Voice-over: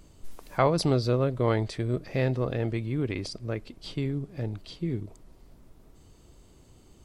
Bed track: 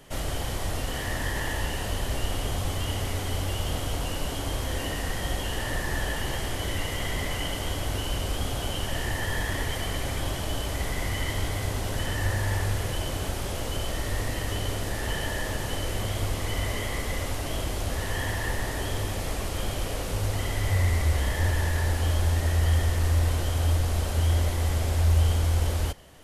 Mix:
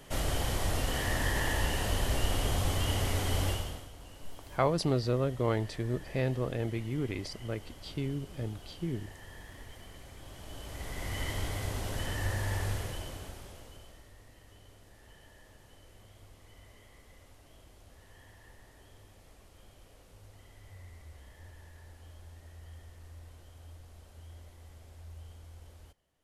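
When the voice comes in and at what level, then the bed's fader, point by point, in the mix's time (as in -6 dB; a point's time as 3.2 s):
4.00 s, -4.5 dB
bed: 3.49 s -1 dB
3.92 s -20.5 dB
10.17 s -20.5 dB
11.21 s -6 dB
12.72 s -6 dB
14.15 s -27 dB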